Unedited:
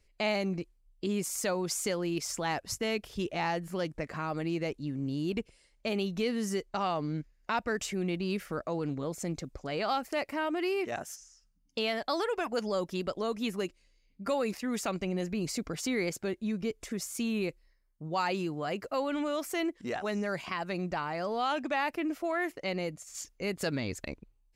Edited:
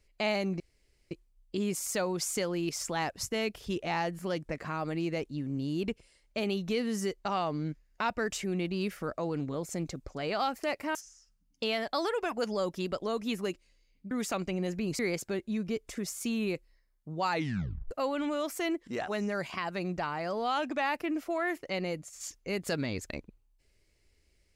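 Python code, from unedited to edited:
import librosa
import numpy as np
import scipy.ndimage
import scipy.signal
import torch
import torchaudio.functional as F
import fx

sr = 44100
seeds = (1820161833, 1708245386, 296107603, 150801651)

y = fx.edit(x, sr, fx.insert_room_tone(at_s=0.6, length_s=0.51),
    fx.cut(start_s=10.44, length_s=0.66),
    fx.cut(start_s=14.26, length_s=0.39),
    fx.cut(start_s=15.53, length_s=0.4),
    fx.tape_stop(start_s=18.25, length_s=0.6), tone=tone)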